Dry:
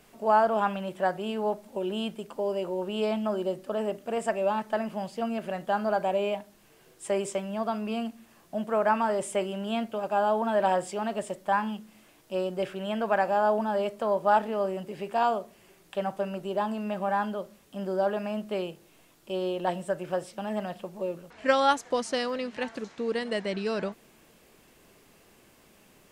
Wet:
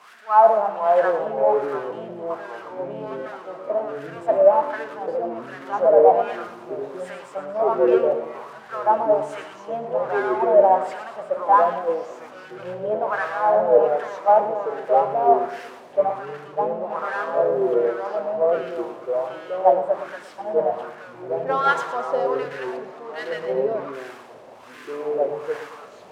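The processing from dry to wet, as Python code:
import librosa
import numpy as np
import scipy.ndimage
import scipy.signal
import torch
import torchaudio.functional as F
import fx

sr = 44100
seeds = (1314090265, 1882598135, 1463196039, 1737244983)

y = x + 0.5 * 10.0 ** (-28.0 / 20.0) * np.sign(x)
y = fx.wah_lfo(y, sr, hz=1.3, low_hz=570.0, high_hz=1600.0, q=4.6)
y = fx.echo_pitch(y, sr, ms=419, semitones=-4, count=2, db_per_echo=-3.0)
y = fx.echo_feedback(y, sr, ms=114, feedback_pct=58, wet_db=-11.0)
y = fx.band_widen(y, sr, depth_pct=70)
y = y * 10.0 ** (9.0 / 20.0)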